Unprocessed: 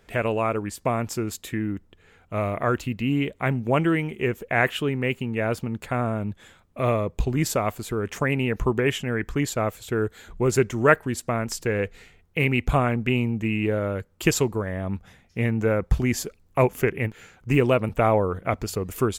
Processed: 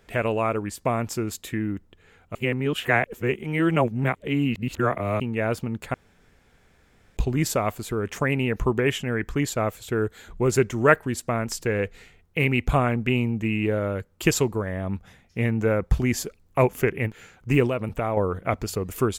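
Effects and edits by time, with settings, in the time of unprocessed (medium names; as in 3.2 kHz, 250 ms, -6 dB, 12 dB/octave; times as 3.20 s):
2.35–5.20 s: reverse
5.94–7.17 s: room tone
17.67–18.17 s: compression 2.5:1, threshold -24 dBFS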